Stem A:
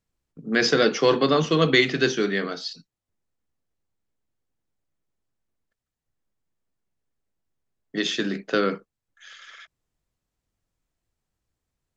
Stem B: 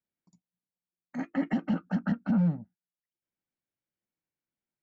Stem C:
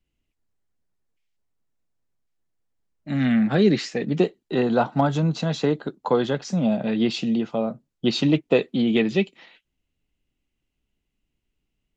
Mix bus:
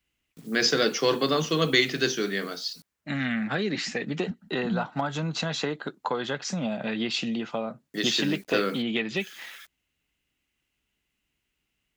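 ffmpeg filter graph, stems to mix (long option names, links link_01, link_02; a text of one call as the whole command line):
ffmpeg -i stem1.wav -i stem2.wav -i stem3.wav -filter_complex "[0:a]acrusher=bits=8:mix=0:aa=0.000001,volume=-5dB[link_01];[1:a]asubboost=boost=9.5:cutoff=180,aeval=exprs='val(0)*pow(10,-33*(0.5-0.5*cos(2*PI*2.1*n/s))/20)':channel_layout=same,adelay=2350,volume=-2.5dB[link_02];[2:a]equalizer=frequency=1700:width_type=o:width=2.2:gain=10.5,volume=-3.5dB[link_03];[link_02][link_03]amix=inputs=2:normalize=0,highpass=43,acompressor=threshold=-28dB:ratio=3,volume=0dB[link_04];[link_01][link_04]amix=inputs=2:normalize=0,highshelf=frequency=4600:gain=11" out.wav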